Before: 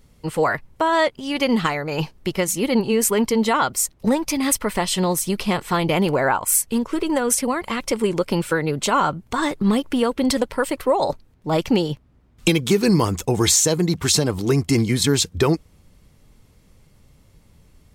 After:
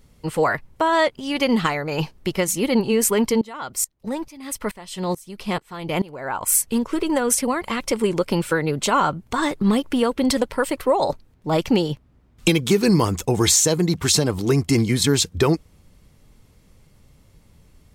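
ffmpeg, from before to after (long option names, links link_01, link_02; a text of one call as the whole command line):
ffmpeg -i in.wav -filter_complex "[0:a]asettb=1/sr,asplit=3[link_01][link_02][link_03];[link_01]atrim=end=3.414[link_04];[link_02]atrim=start=3.41:end=6.41,asetpts=PTS-STARTPTS,afade=type=in:duration=0.004:curve=qsin,afade=type=out:start_time=2.996:duration=0.004:curve=qsin,aeval=exprs='val(0)*pow(10,-23*if(lt(mod(-2.3*n/s,1),2*abs(-2.3)/1000),1-mod(-2.3*n/s,1)/(2*abs(-2.3)/1000),(mod(-2.3*n/s,1)-2*abs(-2.3)/1000)/(1-2*abs(-2.3)/1000))/20)':channel_layout=same[link_05];[link_03]atrim=start=6.406[link_06];[link_04][link_05]acrossfade=duration=0.004:curve1=hsin:curve2=qsin[link_07];[link_07][link_06]acrossfade=duration=0.004:curve1=qsin:curve2=hsin" out.wav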